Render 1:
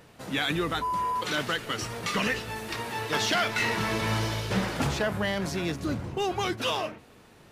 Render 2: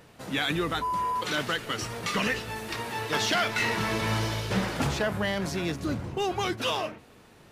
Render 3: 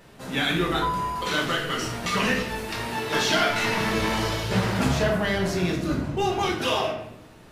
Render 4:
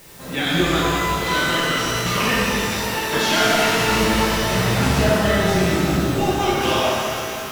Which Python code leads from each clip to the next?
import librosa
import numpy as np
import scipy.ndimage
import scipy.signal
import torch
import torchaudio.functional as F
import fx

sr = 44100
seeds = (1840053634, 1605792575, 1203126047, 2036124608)

y1 = x
y2 = fx.room_shoebox(y1, sr, seeds[0], volume_m3=200.0, walls='mixed', distance_m=1.2)
y3 = fx.quant_dither(y2, sr, seeds[1], bits=8, dither='triangular')
y3 = fx.rev_shimmer(y3, sr, seeds[2], rt60_s=2.6, semitones=12, shimmer_db=-8, drr_db=-3.5)